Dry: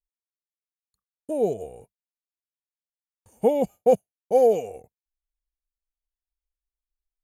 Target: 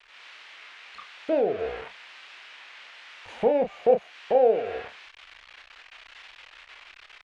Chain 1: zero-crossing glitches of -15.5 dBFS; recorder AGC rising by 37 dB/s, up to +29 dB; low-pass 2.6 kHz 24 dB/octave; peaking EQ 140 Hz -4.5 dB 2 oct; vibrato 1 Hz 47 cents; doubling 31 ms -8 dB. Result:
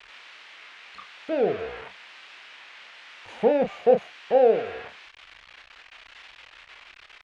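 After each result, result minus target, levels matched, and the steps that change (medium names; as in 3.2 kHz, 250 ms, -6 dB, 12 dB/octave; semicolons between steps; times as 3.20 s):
zero-crossing glitches: distortion +7 dB; 125 Hz band +3.0 dB
change: zero-crossing glitches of -22.5 dBFS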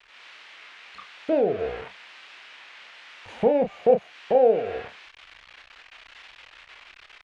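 125 Hz band +4.5 dB
change: peaking EQ 140 Hz -12 dB 2 oct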